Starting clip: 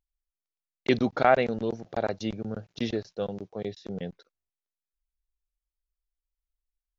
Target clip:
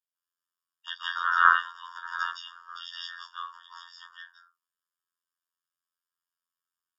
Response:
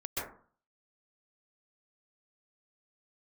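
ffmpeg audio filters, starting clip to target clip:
-filter_complex "[1:a]atrim=start_sample=2205,afade=t=out:st=0.27:d=0.01,atrim=end_sample=12348,asetrate=34398,aresample=44100[a];[0:a][a]afir=irnorm=-1:irlink=0,afftfilt=real='hypot(re,im)*cos(PI*b)':imag='0':win_size=2048:overlap=0.75,afftfilt=real='re*eq(mod(floor(b*sr/1024/930),2),1)':imag='im*eq(mod(floor(b*sr/1024/930),2),1)':win_size=1024:overlap=0.75,volume=8dB"

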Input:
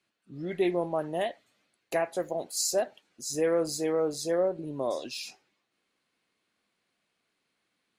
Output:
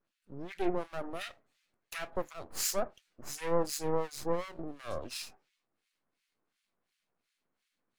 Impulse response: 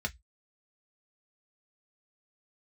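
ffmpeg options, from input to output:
-filter_complex "[0:a]aeval=exprs='max(val(0),0)':c=same,acrossover=split=1500[a][b];[a]aeval=exprs='val(0)*(1-1/2+1/2*cos(2*PI*2.8*n/s))':c=same[c];[b]aeval=exprs='val(0)*(1-1/2-1/2*cos(2*PI*2.8*n/s))':c=same[d];[c][d]amix=inputs=2:normalize=0,volume=3dB"

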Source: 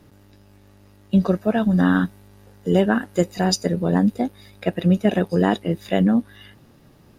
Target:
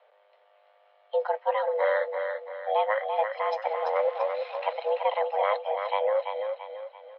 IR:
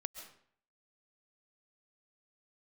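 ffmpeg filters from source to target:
-filter_complex "[0:a]asettb=1/sr,asplit=3[a][b][c];[a]atrim=end=3.624[d];[b]atrim=start=3.62:end=4.73,asetpts=PTS-STARTPTS,afade=t=in:d=0.004:c=qsin,afade=t=out:st=1.106:d=0.004:c=qsin,aeval=exprs='val(0)+0.5*0.0335*sgn(val(0))':c=same[e];[c]atrim=start=4.726[f];[d][e]acrossfade=d=0.004:c1=hsin:c2=qsin[g];[g][f]acrossfade=d=0.004:c1=qsin:c2=hsin,highpass=f=200:t=q:w=0.5412,highpass=f=200:t=q:w=1.307,lowpass=f=3.3k:t=q:w=0.5176,lowpass=f=3.3k:t=q:w=0.7071,lowpass=f=3.3k:t=q:w=1.932,afreqshift=310,aecho=1:1:338|676|1014|1352|1690:0.501|0.205|0.0842|0.0345|0.0142,volume=-6.5dB"

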